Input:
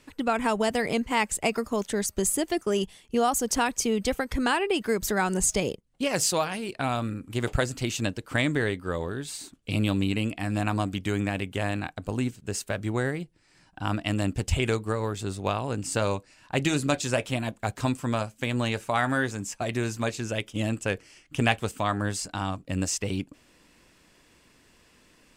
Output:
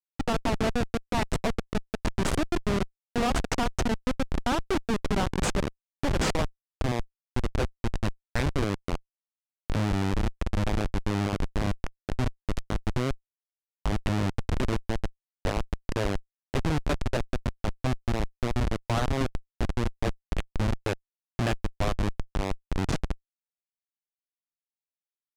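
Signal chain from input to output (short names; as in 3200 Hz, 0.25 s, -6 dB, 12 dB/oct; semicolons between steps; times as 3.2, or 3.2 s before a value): Schmitt trigger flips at -21.5 dBFS; air absorption 51 m; gain +4.5 dB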